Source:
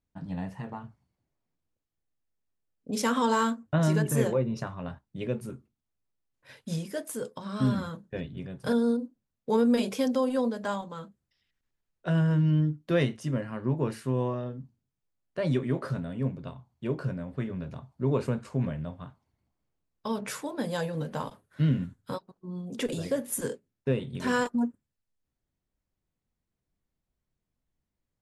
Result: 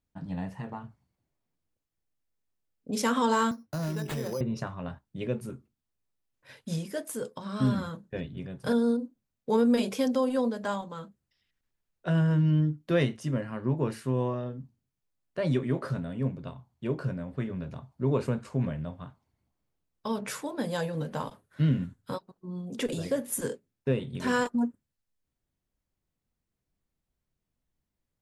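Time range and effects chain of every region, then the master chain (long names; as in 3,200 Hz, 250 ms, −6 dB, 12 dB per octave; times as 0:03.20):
0:03.51–0:04.41: downward compressor 5 to 1, threshold −29 dBFS + bad sample-rate conversion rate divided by 8×, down none, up hold + multiband upward and downward expander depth 70%
whole clip: no processing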